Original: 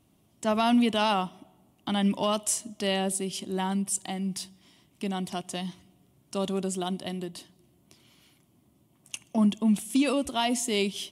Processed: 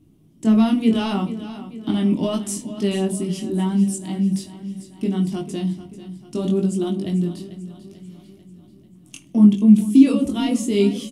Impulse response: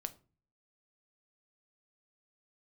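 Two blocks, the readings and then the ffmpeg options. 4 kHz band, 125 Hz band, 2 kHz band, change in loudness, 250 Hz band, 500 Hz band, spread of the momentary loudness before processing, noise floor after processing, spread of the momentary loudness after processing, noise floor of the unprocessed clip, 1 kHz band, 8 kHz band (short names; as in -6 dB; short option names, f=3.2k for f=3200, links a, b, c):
-1.5 dB, +11.0 dB, -2.0 dB, +8.5 dB, +11.0 dB, +5.0 dB, 14 LU, -50 dBFS, 19 LU, -65 dBFS, -3.5 dB, -1.5 dB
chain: -filter_complex "[0:a]lowshelf=f=460:t=q:w=1.5:g=11.5,flanger=delay=19.5:depth=3.7:speed=0.73,aecho=1:1:442|884|1326|1768|2210:0.2|0.108|0.0582|0.0314|0.017[a];[1:a]atrim=start_sample=2205[b];[a][b]afir=irnorm=-1:irlink=0,volume=3.5dB"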